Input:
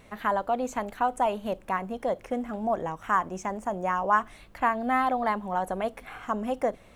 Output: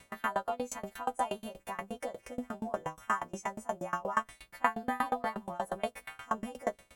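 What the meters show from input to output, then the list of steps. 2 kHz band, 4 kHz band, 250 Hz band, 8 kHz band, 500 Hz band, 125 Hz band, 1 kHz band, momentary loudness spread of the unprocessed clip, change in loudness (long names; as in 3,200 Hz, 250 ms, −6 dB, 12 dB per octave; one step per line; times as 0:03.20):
−6.0 dB, −2.5 dB, −8.5 dB, +0.5 dB, −8.0 dB, −7.5 dB, −8.0 dB, 8 LU, −7.5 dB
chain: every partial snapped to a pitch grid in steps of 2 semitones
tremolo with a ramp in dB decaying 8.4 Hz, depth 26 dB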